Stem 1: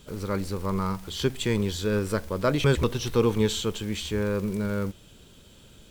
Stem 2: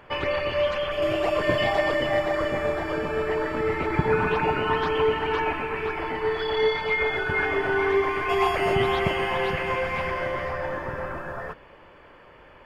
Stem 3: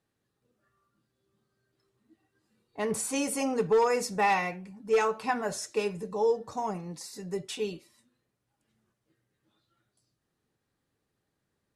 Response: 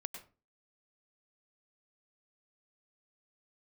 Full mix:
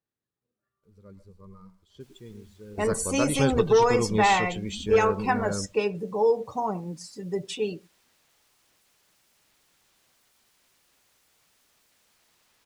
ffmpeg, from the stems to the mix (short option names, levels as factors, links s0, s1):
-filter_complex "[0:a]agate=range=0.0224:threshold=0.00891:ratio=3:detection=peak,adynamicequalizer=threshold=0.00355:dfrequency=6600:dqfactor=0.72:tfrequency=6600:tqfactor=0.72:attack=5:release=100:ratio=0.375:range=2.5:mode=boostabove:tftype=bell,adelay=750,volume=0.562,asplit=2[s0][s1];[s1]volume=0.251[s2];[1:a]aecho=1:1:4.9:0.96,acompressor=threshold=0.0501:ratio=2,aeval=exprs='(mod(37.6*val(0)+1,2)-1)/37.6':c=same,adelay=1900,volume=0.188[s3];[2:a]volume=1.41,asplit=3[s4][s5][s6];[s5]volume=0.188[s7];[s6]apad=whole_len=293285[s8];[s0][s8]sidechaingate=range=0.0224:threshold=0.00251:ratio=16:detection=peak[s9];[3:a]atrim=start_sample=2205[s10];[s2][s7]amix=inputs=2:normalize=0[s11];[s11][s10]afir=irnorm=-1:irlink=0[s12];[s9][s3][s4][s12]amix=inputs=4:normalize=0,afftdn=nr=16:nf=-39,adynamicequalizer=threshold=0.00562:dfrequency=7800:dqfactor=0.7:tfrequency=7800:tqfactor=0.7:attack=5:release=100:ratio=0.375:range=2.5:mode=cutabove:tftype=highshelf"